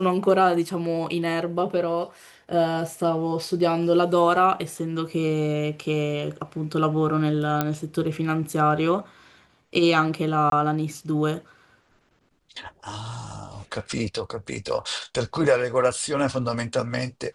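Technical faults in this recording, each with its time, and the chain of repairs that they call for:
7.61 s: pop -8 dBFS
10.50–10.52 s: dropout 22 ms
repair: de-click; interpolate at 10.50 s, 22 ms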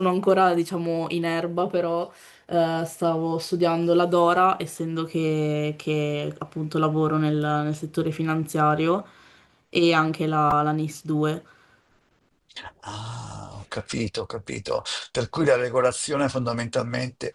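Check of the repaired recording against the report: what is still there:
nothing left

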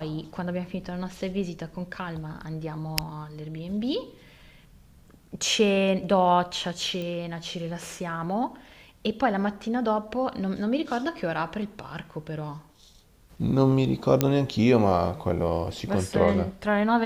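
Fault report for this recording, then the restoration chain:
7.02 s: pop -22 dBFS
14.21 s: pop -6 dBFS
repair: de-click

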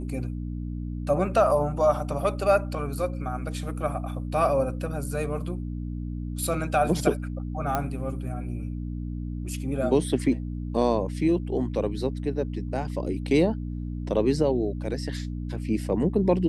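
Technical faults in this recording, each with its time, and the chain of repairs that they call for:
hum 60 Hz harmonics 5 -32 dBFS
7.75 s: pop -12 dBFS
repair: de-click; de-hum 60 Hz, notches 5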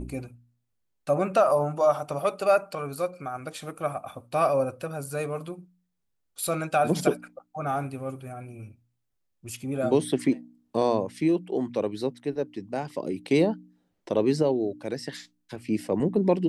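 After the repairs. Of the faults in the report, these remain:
nothing left

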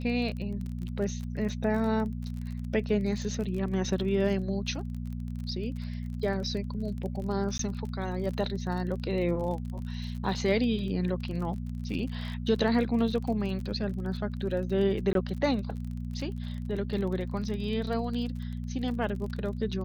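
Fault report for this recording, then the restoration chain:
crackle 33 per s -36 dBFS
hum 60 Hz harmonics 4 -35 dBFS
7.58–7.59 s: dropout 13 ms
15.13–15.15 s: dropout 22 ms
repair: de-click; de-hum 60 Hz, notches 4; interpolate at 7.58 s, 13 ms; interpolate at 15.13 s, 22 ms

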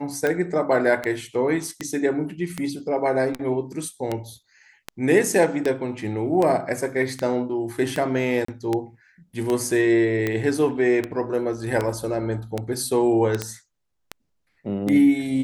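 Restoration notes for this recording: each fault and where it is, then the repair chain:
tick 78 rpm -11 dBFS
8.45–8.48 s: dropout 34 ms
13.42 s: pop -10 dBFS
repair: de-click; interpolate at 8.45 s, 34 ms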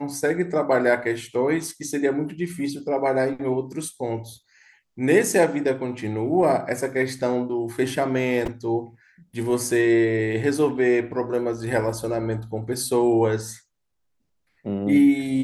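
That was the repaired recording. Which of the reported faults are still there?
nothing left

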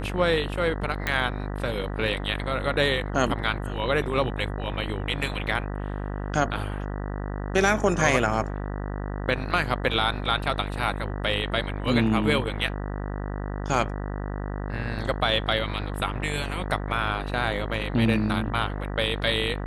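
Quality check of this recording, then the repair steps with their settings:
buzz 50 Hz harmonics 39 -31 dBFS
1.07 s: pop -11 dBFS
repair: de-click; de-hum 50 Hz, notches 39

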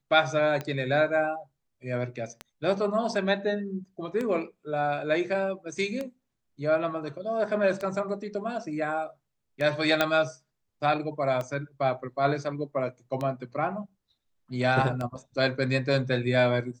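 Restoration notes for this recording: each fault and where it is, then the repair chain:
tick 33 1/3 rpm -19 dBFS
10.01 s: pop -8 dBFS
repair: de-click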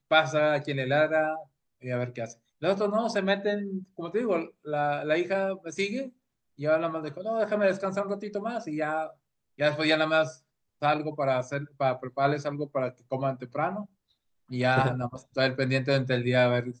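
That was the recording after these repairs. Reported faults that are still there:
nothing left

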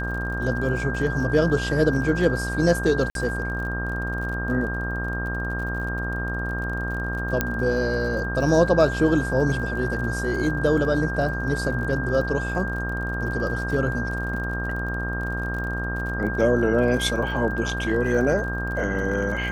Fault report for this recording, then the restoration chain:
buzz 60 Hz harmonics 28 -29 dBFS
crackle 46 per s -33 dBFS
whine 1.6 kHz -29 dBFS
3.10–3.15 s: dropout 52 ms
7.41 s: pop -6 dBFS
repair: de-click; de-hum 60 Hz, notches 28; band-stop 1.6 kHz, Q 30; interpolate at 3.10 s, 52 ms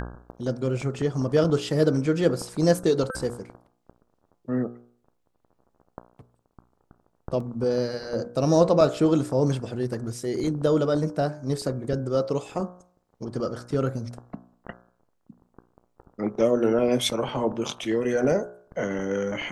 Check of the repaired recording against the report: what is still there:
7.41 s: pop

